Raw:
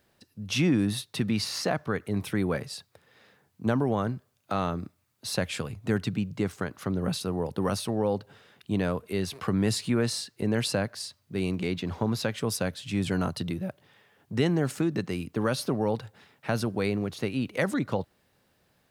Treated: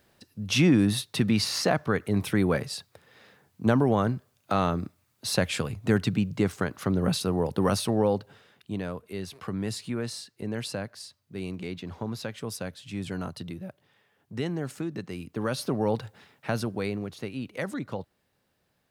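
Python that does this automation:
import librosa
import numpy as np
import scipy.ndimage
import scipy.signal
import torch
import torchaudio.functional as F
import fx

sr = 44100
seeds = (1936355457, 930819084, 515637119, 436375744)

y = fx.gain(x, sr, db=fx.line((8.01, 3.5), (8.83, -6.0), (15.05, -6.0), (16.04, 2.5), (17.26, -5.5)))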